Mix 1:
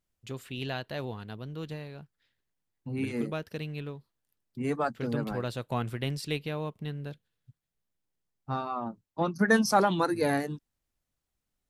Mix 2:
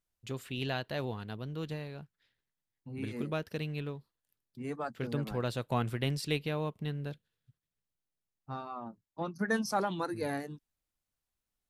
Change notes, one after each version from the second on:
second voice −8.0 dB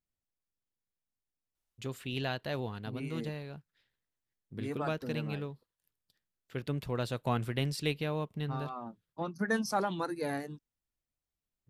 first voice: entry +1.55 s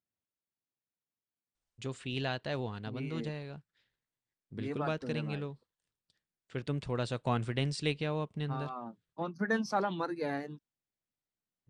first voice: add Butterworth low-pass 9,300 Hz 96 dB per octave
second voice: add band-pass filter 120–4,700 Hz

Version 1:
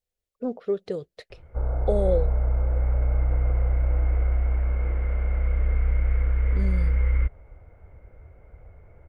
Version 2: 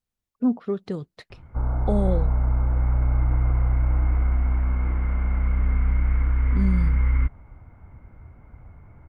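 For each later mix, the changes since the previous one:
master: add octave-band graphic EQ 125/250/500/1,000 Hz +6/+11/−11/+9 dB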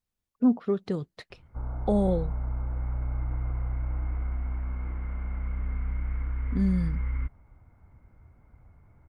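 background −9.5 dB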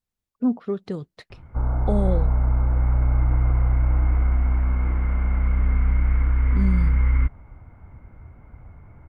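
background +11.0 dB

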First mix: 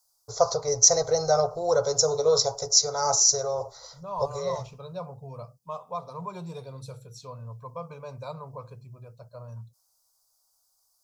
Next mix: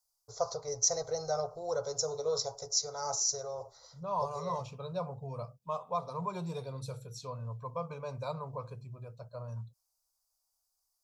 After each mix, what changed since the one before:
first voice −11.0 dB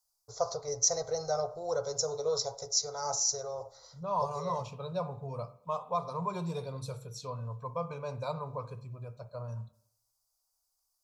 reverb: on

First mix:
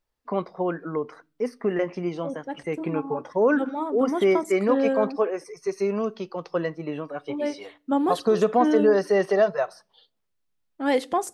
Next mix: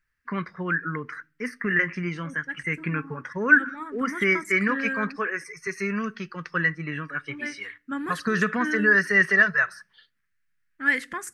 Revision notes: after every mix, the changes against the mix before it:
first voice +5.0 dB
master: add drawn EQ curve 160 Hz 0 dB, 740 Hz −22 dB, 1,700 Hz +14 dB, 3,500 Hz −7 dB, 7,300 Hz −1 dB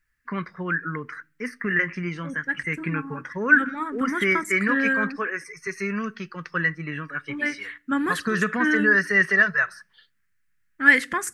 second voice +7.0 dB

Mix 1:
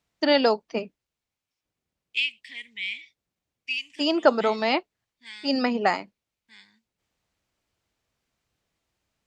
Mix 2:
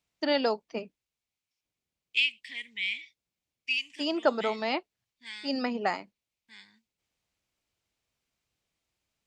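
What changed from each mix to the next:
first voice −6.5 dB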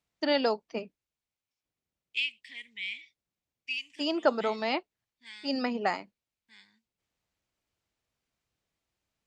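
second voice −5.0 dB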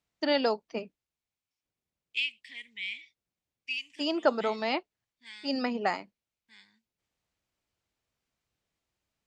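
nothing changed

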